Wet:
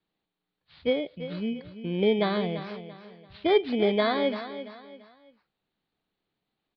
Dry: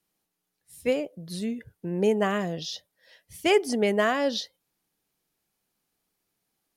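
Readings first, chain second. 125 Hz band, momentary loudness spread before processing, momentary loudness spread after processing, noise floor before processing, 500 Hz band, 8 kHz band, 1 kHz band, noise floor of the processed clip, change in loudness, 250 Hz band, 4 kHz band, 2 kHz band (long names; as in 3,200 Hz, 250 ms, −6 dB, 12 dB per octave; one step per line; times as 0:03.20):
0.0 dB, 13 LU, 16 LU, −81 dBFS, 0.0 dB, below −35 dB, −1.5 dB, −85 dBFS, −0.5 dB, 0.0 dB, −1.0 dB, −3.5 dB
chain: samples in bit-reversed order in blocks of 16 samples
Butterworth low-pass 4,300 Hz 72 dB per octave
on a send: repeating echo 339 ms, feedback 34%, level −12 dB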